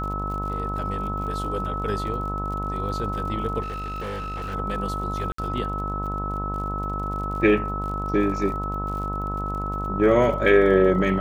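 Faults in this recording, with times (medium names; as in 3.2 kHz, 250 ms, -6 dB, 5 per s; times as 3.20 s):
buzz 50 Hz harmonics 28 -30 dBFS
crackle 50 per s -34 dBFS
whine 1.3 kHz -29 dBFS
3.61–4.55 s: clipped -28 dBFS
5.32–5.38 s: dropout 64 ms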